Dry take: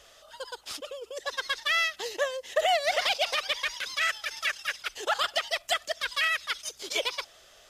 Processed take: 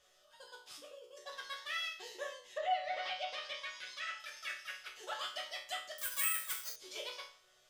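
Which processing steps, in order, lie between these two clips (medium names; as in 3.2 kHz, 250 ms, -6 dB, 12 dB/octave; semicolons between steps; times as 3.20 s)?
chord resonator B2 minor, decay 0.43 s; 2.32–4.20 s: low-pass that closes with the level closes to 2.9 kHz, closed at -36 dBFS; 5.98–6.76 s: careless resampling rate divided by 4×, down none, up zero stuff; trim +2.5 dB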